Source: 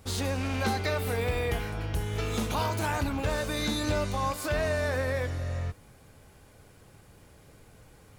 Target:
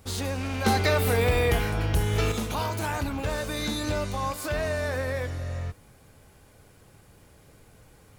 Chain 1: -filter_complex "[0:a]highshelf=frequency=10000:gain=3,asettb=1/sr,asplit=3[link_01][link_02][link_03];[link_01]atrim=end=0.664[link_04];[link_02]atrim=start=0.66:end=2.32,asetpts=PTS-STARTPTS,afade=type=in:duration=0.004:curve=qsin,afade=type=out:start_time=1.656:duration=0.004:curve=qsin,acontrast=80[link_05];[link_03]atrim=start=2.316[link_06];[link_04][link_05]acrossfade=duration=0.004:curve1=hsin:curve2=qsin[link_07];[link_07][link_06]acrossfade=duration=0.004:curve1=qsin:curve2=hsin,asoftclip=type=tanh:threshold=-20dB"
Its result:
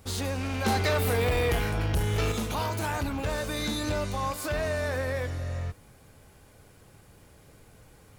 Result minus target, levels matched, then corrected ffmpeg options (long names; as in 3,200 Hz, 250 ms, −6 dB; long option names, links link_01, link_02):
soft clipping: distortion +14 dB
-filter_complex "[0:a]highshelf=frequency=10000:gain=3,asettb=1/sr,asplit=3[link_01][link_02][link_03];[link_01]atrim=end=0.664[link_04];[link_02]atrim=start=0.66:end=2.32,asetpts=PTS-STARTPTS,afade=type=in:duration=0.004:curve=qsin,afade=type=out:start_time=1.656:duration=0.004:curve=qsin,acontrast=80[link_05];[link_03]atrim=start=2.316[link_06];[link_04][link_05]acrossfade=duration=0.004:curve1=hsin:curve2=qsin[link_07];[link_07][link_06]acrossfade=duration=0.004:curve1=qsin:curve2=hsin,asoftclip=type=tanh:threshold=-10.5dB"